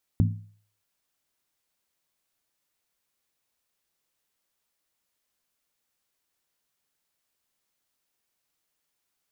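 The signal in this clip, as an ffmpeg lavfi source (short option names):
-f lavfi -i "aevalsrc='0.158*pow(10,-3*t/0.49)*sin(2*PI*104*t)+0.0944*pow(10,-3*t/0.388)*sin(2*PI*165.8*t)+0.0562*pow(10,-3*t/0.335)*sin(2*PI*222.1*t)+0.0335*pow(10,-3*t/0.323)*sin(2*PI*238.8*t)+0.02*pow(10,-3*t/0.301)*sin(2*PI*275.9*t)':d=0.63:s=44100"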